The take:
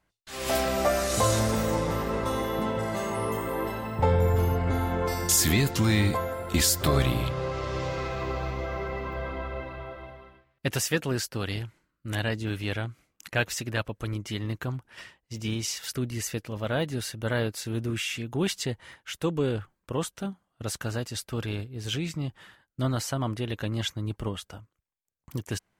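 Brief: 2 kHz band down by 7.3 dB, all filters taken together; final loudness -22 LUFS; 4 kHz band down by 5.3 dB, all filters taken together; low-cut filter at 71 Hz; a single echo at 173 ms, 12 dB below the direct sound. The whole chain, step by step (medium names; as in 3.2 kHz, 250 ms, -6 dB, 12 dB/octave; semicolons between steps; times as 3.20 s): high-pass 71 Hz; peaking EQ 2 kHz -8.5 dB; peaking EQ 4 kHz -4.5 dB; delay 173 ms -12 dB; trim +8 dB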